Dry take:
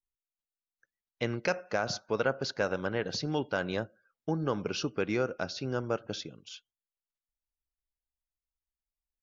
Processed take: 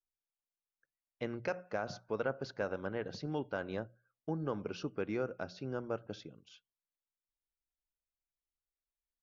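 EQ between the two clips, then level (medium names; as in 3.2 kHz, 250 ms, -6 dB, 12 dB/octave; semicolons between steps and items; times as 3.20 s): treble shelf 2.8 kHz -12 dB; hum notches 60/120/180 Hz; -5.5 dB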